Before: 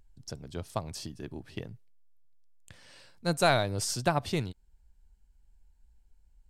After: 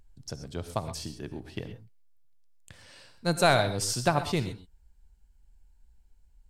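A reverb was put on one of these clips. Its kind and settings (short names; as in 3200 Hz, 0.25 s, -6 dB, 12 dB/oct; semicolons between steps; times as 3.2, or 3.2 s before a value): non-linear reverb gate 0.15 s rising, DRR 10 dB; gain +2 dB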